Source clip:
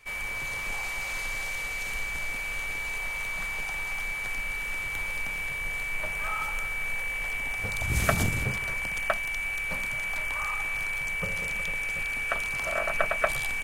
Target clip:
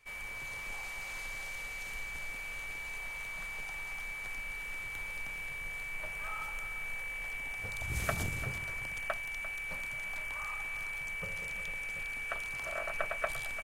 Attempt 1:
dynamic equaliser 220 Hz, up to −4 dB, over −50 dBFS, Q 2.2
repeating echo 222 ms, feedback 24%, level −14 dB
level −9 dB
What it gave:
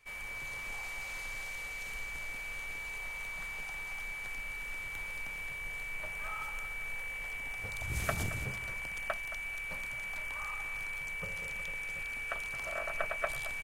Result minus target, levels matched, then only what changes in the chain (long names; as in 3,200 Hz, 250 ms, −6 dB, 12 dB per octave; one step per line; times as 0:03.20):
echo 124 ms early
change: repeating echo 346 ms, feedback 24%, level −14 dB